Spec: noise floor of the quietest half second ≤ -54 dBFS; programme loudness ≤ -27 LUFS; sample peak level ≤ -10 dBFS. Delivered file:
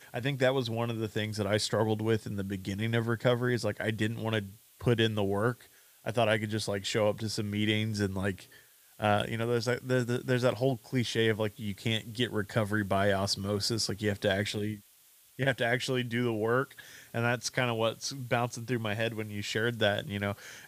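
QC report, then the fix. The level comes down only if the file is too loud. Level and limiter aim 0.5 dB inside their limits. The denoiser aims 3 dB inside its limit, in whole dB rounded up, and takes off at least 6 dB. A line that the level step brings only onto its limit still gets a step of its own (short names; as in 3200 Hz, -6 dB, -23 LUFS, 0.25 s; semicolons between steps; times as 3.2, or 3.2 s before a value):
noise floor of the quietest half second -61 dBFS: OK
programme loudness -30.5 LUFS: OK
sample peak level -12.5 dBFS: OK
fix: none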